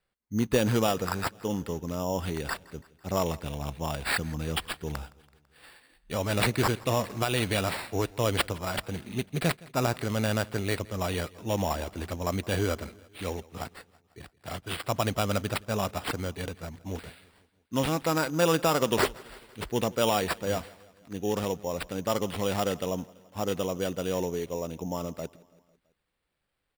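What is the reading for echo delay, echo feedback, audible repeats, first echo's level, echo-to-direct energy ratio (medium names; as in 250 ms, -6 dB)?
166 ms, 59%, 3, -23.0 dB, -21.0 dB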